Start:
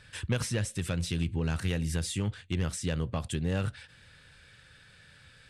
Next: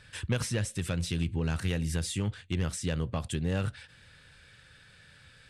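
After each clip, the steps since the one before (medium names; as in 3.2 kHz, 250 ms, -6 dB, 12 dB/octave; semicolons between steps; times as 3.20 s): no audible change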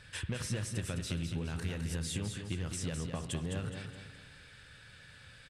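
compression, threshold -34 dBFS, peak gain reduction 9.5 dB; on a send: feedback delay 209 ms, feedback 40%, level -6.5 dB; on the sum: spring tank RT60 1.4 s, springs 54 ms, chirp 55 ms, DRR 11.5 dB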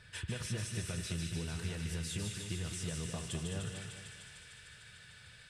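comb of notches 270 Hz; feedback echo behind a high-pass 150 ms, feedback 82%, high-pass 1.9 kHz, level -4 dB; trim -2 dB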